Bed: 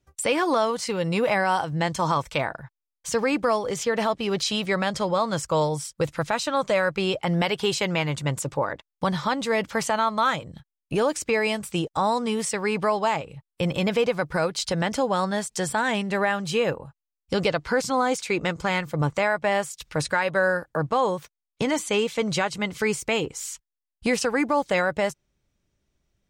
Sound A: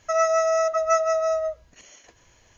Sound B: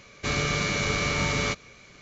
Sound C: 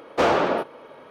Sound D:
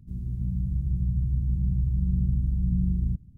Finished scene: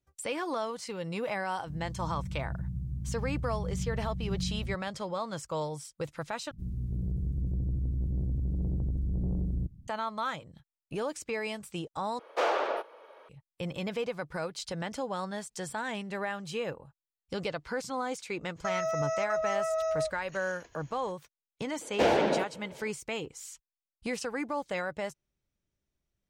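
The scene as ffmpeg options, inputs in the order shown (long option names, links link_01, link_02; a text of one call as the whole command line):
ffmpeg -i bed.wav -i cue0.wav -i cue1.wav -i cue2.wav -i cue3.wav -filter_complex "[4:a]asplit=2[link_01][link_02];[3:a]asplit=2[link_03][link_04];[0:a]volume=-11dB[link_05];[link_01]highpass=frequency=110:poles=1[link_06];[link_02]asoftclip=type=tanh:threshold=-25dB[link_07];[link_03]highpass=frequency=420:width=0.5412,highpass=frequency=420:width=1.3066[link_08];[1:a]alimiter=limit=-21.5dB:level=0:latency=1:release=71[link_09];[link_04]equalizer=frequency=1200:width=4.2:gain=-15[link_10];[link_05]asplit=3[link_11][link_12][link_13];[link_11]atrim=end=6.514[link_14];[link_07]atrim=end=3.37,asetpts=PTS-STARTPTS,volume=-1.5dB[link_15];[link_12]atrim=start=9.876:end=12.194[link_16];[link_08]atrim=end=1.1,asetpts=PTS-STARTPTS,volume=-7.5dB[link_17];[link_13]atrim=start=13.286[link_18];[link_06]atrim=end=3.37,asetpts=PTS-STARTPTS,volume=-5.5dB,afade=type=in:duration=0.004:curve=hsin,afade=type=out:start_time=3.366:duration=0.004:curve=hsin,adelay=1590[link_19];[link_09]atrim=end=2.57,asetpts=PTS-STARTPTS,volume=-3.5dB,afade=type=in:duration=0.02,afade=type=out:start_time=2.55:duration=0.02,adelay=18560[link_20];[link_10]atrim=end=1.1,asetpts=PTS-STARTPTS,volume=-4dB,afade=type=in:duration=0.004:curve=hsin,afade=type=out:start_time=1.096:duration=0.004:curve=hsin,adelay=21810[link_21];[link_14][link_15]acrossfade=duration=0.004:curve1=hsin:curve2=hsin[link_22];[link_22][link_16]acrossfade=duration=0.004:curve1=hsin:curve2=hsin[link_23];[link_23][link_17]acrossfade=duration=0.004:curve1=hsin:curve2=hsin[link_24];[link_24][link_18]acrossfade=duration=0.004:curve1=hsin:curve2=hsin[link_25];[link_25][link_19][link_20][link_21]amix=inputs=4:normalize=0" out.wav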